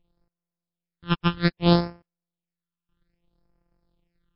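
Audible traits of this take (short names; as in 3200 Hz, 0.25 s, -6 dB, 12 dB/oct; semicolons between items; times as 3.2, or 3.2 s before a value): a buzz of ramps at a fixed pitch in blocks of 256 samples; phasing stages 8, 0.62 Hz, lowest notch 590–3600 Hz; MP3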